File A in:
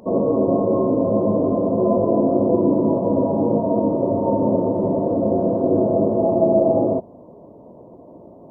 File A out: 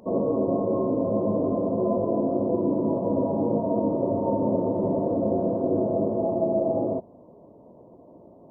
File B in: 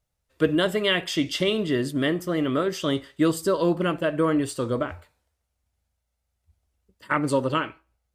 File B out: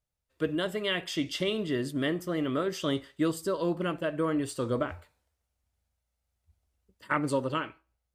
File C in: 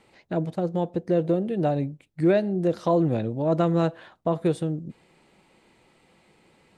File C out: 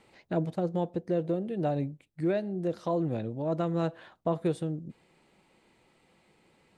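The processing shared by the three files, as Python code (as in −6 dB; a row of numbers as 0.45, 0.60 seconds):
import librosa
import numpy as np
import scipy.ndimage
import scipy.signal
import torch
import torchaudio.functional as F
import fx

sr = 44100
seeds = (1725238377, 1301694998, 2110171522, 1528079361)

y = fx.rider(x, sr, range_db=4, speed_s=0.5)
y = y * 10.0 ** (-6.0 / 20.0)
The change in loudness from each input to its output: −6.0, −6.0, −6.5 LU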